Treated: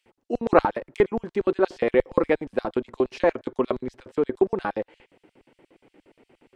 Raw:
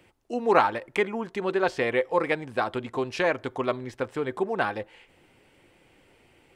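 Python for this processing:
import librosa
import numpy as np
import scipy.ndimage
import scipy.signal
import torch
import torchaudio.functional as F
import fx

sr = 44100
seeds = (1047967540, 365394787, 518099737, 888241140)

y = fx.filter_lfo_highpass(x, sr, shape='square', hz=8.5, low_hz=290.0, high_hz=4400.0, q=1.0)
y = fx.tilt_eq(y, sr, slope=-3.5)
y = F.gain(torch.from_numpy(y), 1.5).numpy()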